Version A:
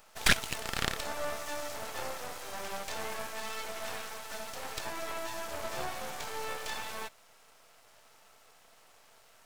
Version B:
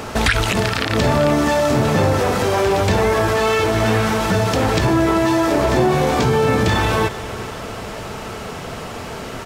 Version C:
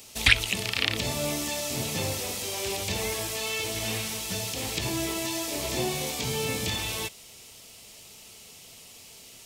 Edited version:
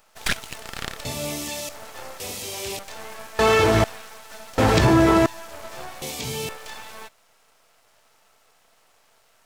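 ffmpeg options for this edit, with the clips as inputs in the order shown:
-filter_complex "[2:a]asplit=3[a][b][c];[1:a]asplit=2[d][e];[0:a]asplit=6[f][g][h][i][j][k];[f]atrim=end=1.052[l];[a]atrim=start=1.048:end=1.692[m];[g]atrim=start=1.688:end=2.202[n];[b]atrim=start=2.198:end=2.792[o];[h]atrim=start=2.788:end=3.392[p];[d]atrim=start=3.388:end=3.842[q];[i]atrim=start=3.838:end=4.582[r];[e]atrim=start=4.578:end=5.262[s];[j]atrim=start=5.258:end=6.022[t];[c]atrim=start=6.018:end=6.492[u];[k]atrim=start=6.488[v];[l][m]acrossfade=d=0.004:c1=hsin:c2=hsin[w];[w][n]acrossfade=d=0.004:c1=hsin:c2=hsin[x];[x][o]acrossfade=d=0.004:c1=hsin:c2=hsin[y];[y][p]acrossfade=d=0.004:c1=hsin:c2=hsin[z];[z][q]acrossfade=d=0.004:c1=hsin:c2=hsin[aa];[aa][r]acrossfade=d=0.004:c1=hsin:c2=hsin[ab];[ab][s]acrossfade=d=0.004:c1=hsin:c2=hsin[ac];[ac][t]acrossfade=d=0.004:c1=hsin:c2=hsin[ad];[ad][u]acrossfade=d=0.004:c1=hsin:c2=hsin[ae];[ae][v]acrossfade=d=0.004:c1=hsin:c2=hsin"

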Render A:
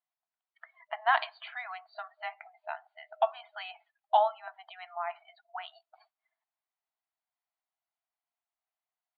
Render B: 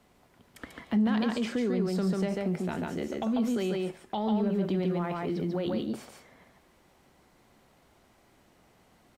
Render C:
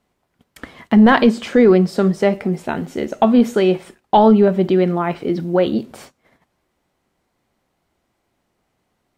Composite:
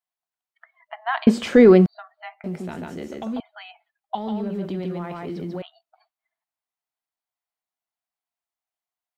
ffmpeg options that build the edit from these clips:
-filter_complex "[1:a]asplit=2[a][b];[0:a]asplit=4[c][d][e][f];[c]atrim=end=1.272[g];[2:a]atrim=start=1.268:end=1.862[h];[d]atrim=start=1.858:end=2.442[i];[a]atrim=start=2.438:end=3.402[j];[e]atrim=start=3.398:end=4.152[k];[b]atrim=start=4.148:end=5.622[l];[f]atrim=start=5.618[m];[g][h]acrossfade=d=0.004:c1=hsin:c2=hsin[n];[n][i]acrossfade=d=0.004:c1=hsin:c2=hsin[o];[o][j]acrossfade=d=0.004:c1=hsin:c2=hsin[p];[p][k]acrossfade=d=0.004:c1=hsin:c2=hsin[q];[q][l]acrossfade=d=0.004:c1=hsin:c2=hsin[r];[r][m]acrossfade=d=0.004:c1=hsin:c2=hsin"

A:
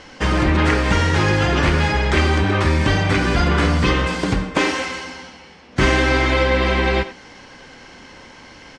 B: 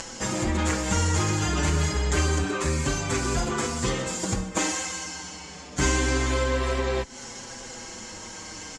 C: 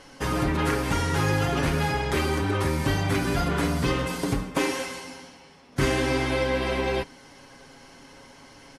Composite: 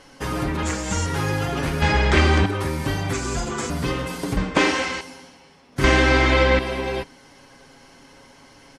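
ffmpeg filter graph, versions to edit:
-filter_complex "[1:a]asplit=2[a][b];[0:a]asplit=3[c][d][e];[2:a]asplit=6[f][g][h][i][j][k];[f]atrim=end=0.632[l];[a]atrim=start=0.628:end=1.062[m];[g]atrim=start=1.058:end=1.822[n];[c]atrim=start=1.818:end=2.462[o];[h]atrim=start=2.458:end=3.132[p];[b]atrim=start=3.128:end=3.702[q];[i]atrim=start=3.698:end=4.372[r];[d]atrim=start=4.368:end=5.012[s];[j]atrim=start=5.008:end=5.842[t];[e]atrim=start=5.838:end=6.592[u];[k]atrim=start=6.588[v];[l][m]acrossfade=d=0.004:c1=hsin:c2=hsin[w];[w][n]acrossfade=d=0.004:c1=hsin:c2=hsin[x];[x][o]acrossfade=d=0.004:c1=hsin:c2=hsin[y];[y][p]acrossfade=d=0.004:c1=hsin:c2=hsin[z];[z][q]acrossfade=d=0.004:c1=hsin:c2=hsin[aa];[aa][r]acrossfade=d=0.004:c1=hsin:c2=hsin[ab];[ab][s]acrossfade=d=0.004:c1=hsin:c2=hsin[ac];[ac][t]acrossfade=d=0.004:c1=hsin:c2=hsin[ad];[ad][u]acrossfade=d=0.004:c1=hsin:c2=hsin[ae];[ae][v]acrossfade=d=0.004:c1=hsin:c2=hsin"

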